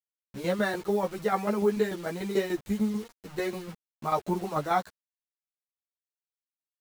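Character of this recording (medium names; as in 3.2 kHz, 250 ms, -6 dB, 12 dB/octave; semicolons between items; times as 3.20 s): tremolo saw down 6.8 Hz, depth 65%; a quantiser's noise floor 8-bit, dither none; a shimmering, thickened sound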